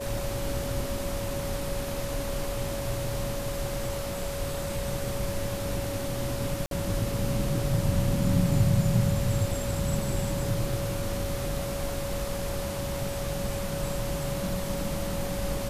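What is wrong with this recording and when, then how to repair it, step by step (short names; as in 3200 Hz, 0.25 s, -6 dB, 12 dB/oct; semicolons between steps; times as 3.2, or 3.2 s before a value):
tone 560 Hz -34 dBFS
6.66–6.71 gap 52 ms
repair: notch 560 Hz, Q 30; interpolate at 6.66, 52 ms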